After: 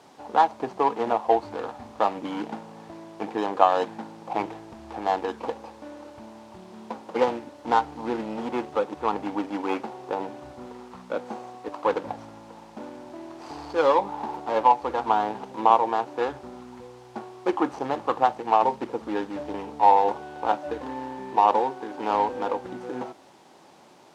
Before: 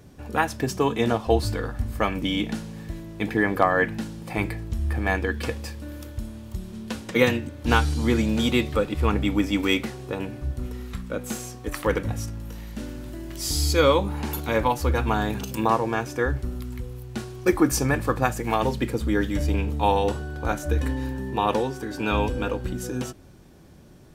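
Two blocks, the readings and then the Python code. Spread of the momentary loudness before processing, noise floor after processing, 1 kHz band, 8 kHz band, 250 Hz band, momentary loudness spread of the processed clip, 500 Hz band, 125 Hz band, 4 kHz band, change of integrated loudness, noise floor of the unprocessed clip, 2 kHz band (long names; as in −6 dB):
14 LU, −50 dBFS, +5.5 dB, below −15 dB, −7.0 dB, 21 LU, −1.0 dB, −20.0 dB, −10.0 dB, −0.5 dB, −45 dBFS, −9.5 dB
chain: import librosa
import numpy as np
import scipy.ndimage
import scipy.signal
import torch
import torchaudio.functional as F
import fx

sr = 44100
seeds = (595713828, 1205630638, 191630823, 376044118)

p1 = scipy.signal.medfilt(x, 25)
p2 = fx.rider(p1, sr, range_db=4, speed_s=0.5)
p3 = p1 + (p2 * 10.0 ** (-2.0 / 20.0))
p4 = fx.quant_dither(p3, sr, seeds[0], bits=8, dither='triangular')
p5 = fx.bandpass_edges(p4, sr, low_hz=310.0, high_hz=5800.0)
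p6 = fx.peak_eq(p5, sr, hz=860.0, db=13.5, octaves=0.87)
y = p6 * 10.0 ** (-8.0 / 20.0)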